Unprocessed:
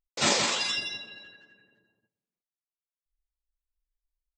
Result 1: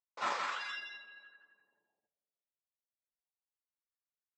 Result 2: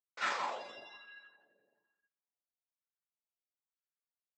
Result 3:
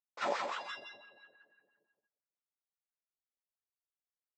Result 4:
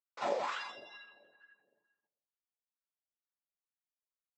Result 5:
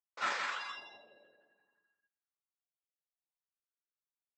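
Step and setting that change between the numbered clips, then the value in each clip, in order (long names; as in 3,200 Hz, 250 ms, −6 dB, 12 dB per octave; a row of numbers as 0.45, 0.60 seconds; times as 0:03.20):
LFO wah, speed: 0.28, 1.1, 5.9, 2.2, 0.6 Hertz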